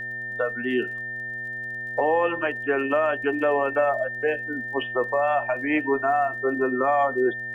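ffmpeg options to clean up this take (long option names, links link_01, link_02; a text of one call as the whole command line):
ffmpeg -i in.wav -af "adeclick=threshold=4,bandreject=frequency=122.6:width_type=h:width=4,bandreject=frequency=245.2:width_type=h:width=4,bandreject=frequency=367.8:width_type=h:width=4,bandreject=frequency=490.4:width_type=h:width=4,bandreject=frequency=613:width_type=h:width=4,bandreject=frequency=735.6:width_type=h:width=4,bandreject=frequency=1800:width=30,agate=range=-21dB:threshold=-25dB" out.wav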